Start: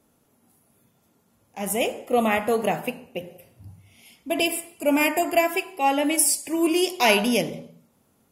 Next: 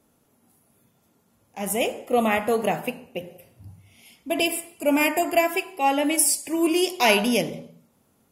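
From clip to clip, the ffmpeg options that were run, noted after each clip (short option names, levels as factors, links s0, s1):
-af anull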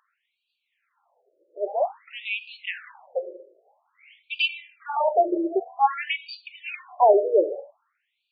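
-af "aemphasis=mode=reproduction:type=bsi,aeval=exprs='val(0)+0.0126*(sin(2*PI*50*n/s)+sin(2*PI*2*50*n/s)/2+sin(2*PI*3*50*n/s)/3+sin(2*PI*4*50*n/s)/4+sin(2*PI*5*50*n/s)/5)':c=same,afftfilt=real='re*between(b*sr/1024,440*pow(3400/440,0.5+0.5*sin(2*PI*0.51*pts/sr))/1.41,440*pow(3400/440,0.5+0.5*sin(2*PI*0.51*pts/sr))*1.41)':imag='im*between(b*sr/1024,440*pow(3400/440,0.5+0.5*sin(2*PI*0.51*pts/sr))/1.41,440*pow(3400/440,0.5+0.5*sin(2*PI*0.51*pts/sr))*1.41)':win_size=1024:overlap=0.75,volume=1.88"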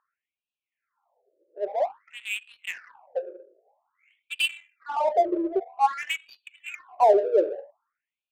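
-af "adynamicsmooth=sensitivity=5:basefreq=1300,volume=0.841"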